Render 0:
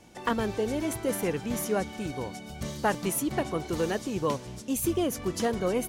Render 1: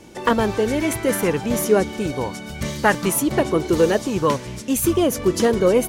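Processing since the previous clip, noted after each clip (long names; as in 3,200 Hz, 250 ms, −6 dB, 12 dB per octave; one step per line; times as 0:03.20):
notch filter 730 Hz, Q 12
auto-filter bell 0.55 Hz 360–2,200 Hz +6 dB
level +8.5 dB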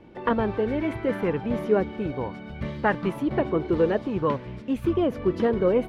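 high-frequency loss of the air 420 metres
level −4 dB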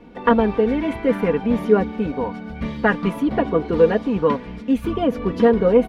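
comb filter 4.2 ms, depth 71%
level +4 dB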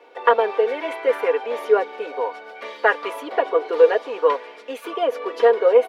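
Butterworth high-pass 420 Hz 36 dB per octave
level +2 dB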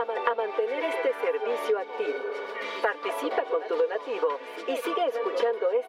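echo ahead of the sound 296 ms −14.5 dB
downward compressor 5 to 1, threshold −28 dBFS, peak gain reduction 18 dB
healed spectral selection 0:02.08–0:02.71, 400–1,800 Hz both
level +3.5 dB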